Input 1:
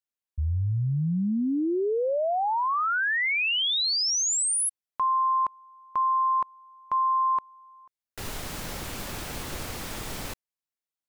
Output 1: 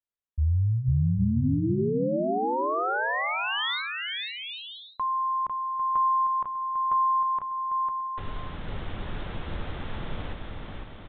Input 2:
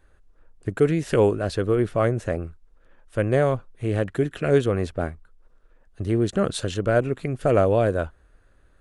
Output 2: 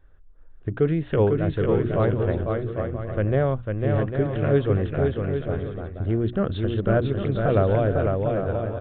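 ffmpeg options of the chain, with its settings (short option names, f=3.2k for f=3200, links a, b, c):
-af "equalizer=f=2.5k:t=o:w=0.58:g=-4,aecho=1:1:500|800|980|1088|1153:0.631|0.398|0.251|0.158|0.1,aresample=8000,aresample=44100,lowshelf=f=160:g=8.5,bandreject=f=60:t=h:w=6,bandreject=f=120:t=h:w=6,bandreject=f=180:t=h:w=6,bandreject=f=240:t=h:w=6,bandreject=f=300:t=h:w=6,bandreject=f=360:t=h:w=6,volume=-3.5dB"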